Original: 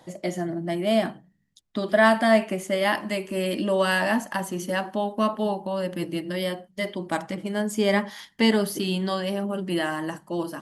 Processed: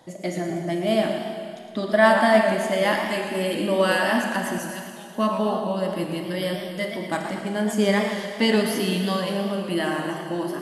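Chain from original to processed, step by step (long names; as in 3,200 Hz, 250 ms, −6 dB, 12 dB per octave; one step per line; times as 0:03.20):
0:04.58–0:05.15: first difference
convolution reverb RT60 2.3 s, pre-delay 26 ms, DRR 4 dB
feedback echo with a swinging delay time 115 ms, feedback 51%, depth 184 cents, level −10 dB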